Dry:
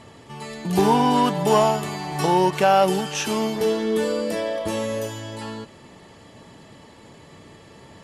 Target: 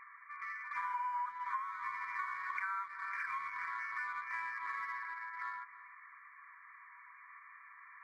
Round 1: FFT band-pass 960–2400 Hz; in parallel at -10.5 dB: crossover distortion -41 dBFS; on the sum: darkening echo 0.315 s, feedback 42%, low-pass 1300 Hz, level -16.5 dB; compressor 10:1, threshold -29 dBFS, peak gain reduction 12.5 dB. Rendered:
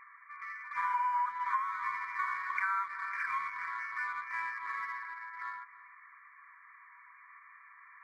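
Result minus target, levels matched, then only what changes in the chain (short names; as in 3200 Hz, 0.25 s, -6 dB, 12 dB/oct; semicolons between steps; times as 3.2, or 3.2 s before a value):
compressor: peak gain reduction -6.5 dB
change: compressor 10:1, threshold -36 dBFS, peak gain reduction 19 dB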